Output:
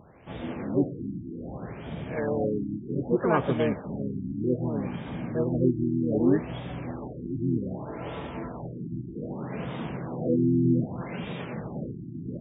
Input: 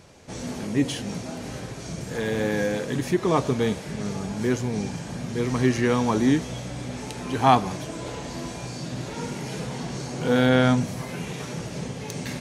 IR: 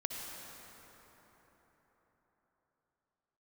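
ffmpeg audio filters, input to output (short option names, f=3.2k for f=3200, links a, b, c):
-filter_complex "[0:a]asplit=2[a][b];[b]asetrate=58866,aresample=44100,atempo=0.749154,volume=-3dB[c];[a][c]amix=inputs=2:normalize=0,afftfilt=real='re*lt(b*sr/1024,350*pow(3800/350,0.5+0.5*sin(2*PI*0.64*pts/sr)))':imag='im*lt(b*sr/1024,350*pow(3800/350,0.5+0.5*sin(2*PI*0.64*pts/sr)))':win_size=1024:overlap=0.75,volume=-3.5dB"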